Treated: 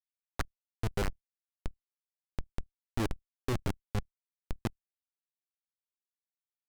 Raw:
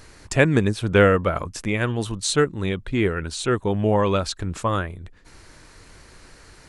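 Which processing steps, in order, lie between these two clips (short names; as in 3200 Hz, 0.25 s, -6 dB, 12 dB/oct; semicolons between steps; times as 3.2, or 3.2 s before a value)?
random spectral dropouts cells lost 69%; low shelf 300 Hz +7.5 dB; Schmitt trigger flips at -15 dBFS; level quantiser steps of 15 dB; Doppler distortion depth 0.83 ms; gain +1 dB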